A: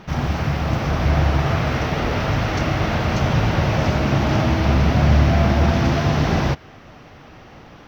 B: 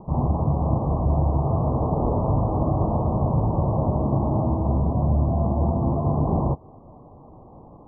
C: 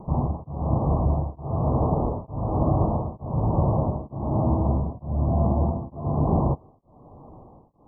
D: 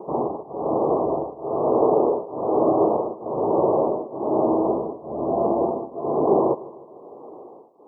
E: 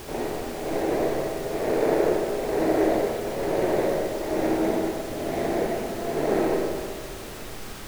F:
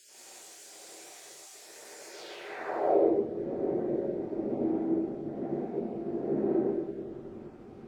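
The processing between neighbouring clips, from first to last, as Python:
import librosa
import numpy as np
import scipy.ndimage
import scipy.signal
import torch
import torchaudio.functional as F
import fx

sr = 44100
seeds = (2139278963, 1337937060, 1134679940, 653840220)

y1 = fx.spec_gate(x, sr, threshold_db=-30, keep='strong')
y1 = scipy.signal.sosfilt(scipy.signal.butter(16, 1100.0, 'lowpass', fs=sr, output='sos'), y1)
y1 = fx.rider(y1, sr, range_db=3, speed_s=0.5)
y1 = y1 * librosa.db_to_amplitude(-3.0)
y2 = y1 * np.abs(np.cos(np.pi * 1.1 * np.arange(len(y1)) / sr))
y2 = y2 * librosa.db_to_amplitude(1.0)
y3 = fx.highpass_res(y2, sr, hz=400.0, q=3.5)
y3 = fx.echo_feedback(y3, sr, ms=152, feedback_pct=56, wet_db=-19.0)
y3 = y3 * librosa.db_to_amplitude(3.0)
y4 = scipy.signal.medfilt(y3, 41)
y4 = fx.dmg_noise_colour(y4, sr, seeds[0], colour='pink', level_db=-36.0)
y4 = fx.rev_freeverb(y4, sr, rt60_s=1.7, hf_ratio=0.6, predelay_ms=25, drr_db=0.0)
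y4 = y4 * librosa.db_to_amplitude(-5.0)
y5 = fx.spec_dropout(y4, sr, seeds[1], share_pct=21)
y5 = fx.rev_gated(y5, sr, seeds[2], gate_ms=200, shape='rising', drr_db=-5.5)
y5 = fx.filter_sweep_bandpass(y5, sr, from_hz=7100.0, to_hz=250.0, start_s=2.07, end_s=3.25, q=1.7)
y5 = y5 * librosa.db_to_amplitude(-6.0)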